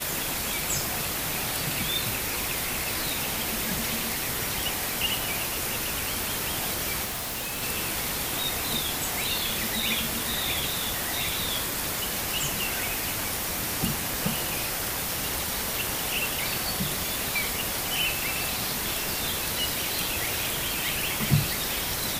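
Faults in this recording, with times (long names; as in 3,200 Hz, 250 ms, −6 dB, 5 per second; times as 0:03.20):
0:07.04–0:07.63: clipping −29 dBFS
0:21.08: click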